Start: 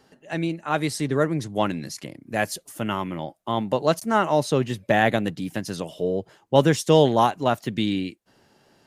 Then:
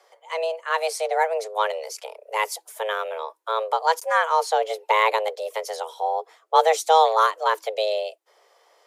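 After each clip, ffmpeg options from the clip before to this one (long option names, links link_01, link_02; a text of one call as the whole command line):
ffmpeg -i in.wav -af "afreqshift=320" out.wav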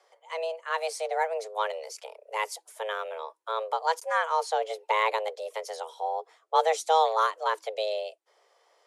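ffmpeg -i in.wav -af "lowpass=frequency=11000:width=0.5412,lowpass=frequency=11000:width=1.3066,volume=-6dB" out.wav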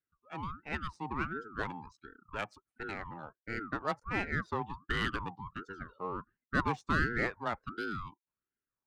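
ffmpeg -i in.wav -af "afftdn=noise_reduction=23:noise_floor=-44,adynamicsmooth=sensitivity=2.5:basefreq=2200,aeval=exprs='val(0)*sin(2*PI*610*n/s+610*0.5/1.4*sin(2*PI*1.4*n/s))':channel_layout=same,volume=-4.5dB" out.wav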